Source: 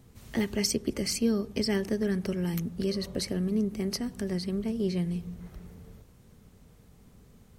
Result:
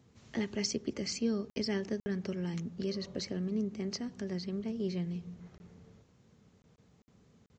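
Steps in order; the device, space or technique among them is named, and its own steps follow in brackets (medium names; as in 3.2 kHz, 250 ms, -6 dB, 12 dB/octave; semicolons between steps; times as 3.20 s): call with lost packets (high-pass 100 Hz 12 dB/octave; resampled via 16 kHz; lost packets bursts); trim -5.5 dB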